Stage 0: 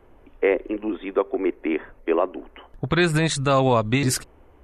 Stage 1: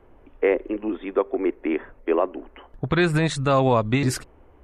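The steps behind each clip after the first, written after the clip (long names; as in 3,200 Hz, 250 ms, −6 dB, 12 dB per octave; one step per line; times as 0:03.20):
high-shelf EQ 3,700 Hz −7.5 dB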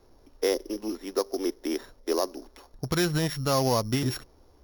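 samples sorted by size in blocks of 8 samples
level −5.5 dB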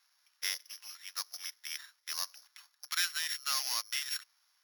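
high-pass filter 1,500 Hz 24 dB per octave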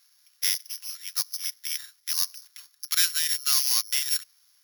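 spectral tilt +4 dB per octave
level −1 dB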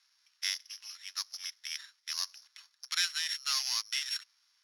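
band-pass filter 550–5,300 Hz
level −2.5 dB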